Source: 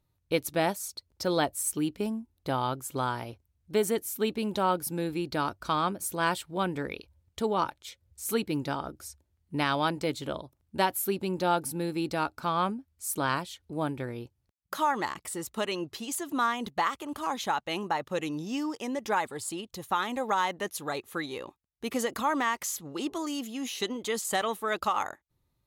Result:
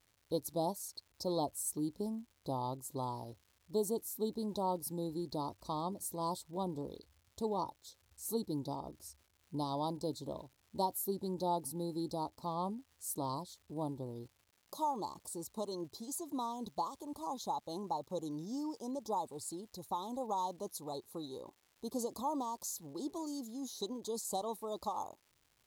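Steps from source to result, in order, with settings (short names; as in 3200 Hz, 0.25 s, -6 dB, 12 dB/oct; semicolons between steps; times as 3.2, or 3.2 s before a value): elliptic band-stop 1000–4000 Hz, stop band 40 dB; crackle 310/s -49 dBFS; gain -7 dB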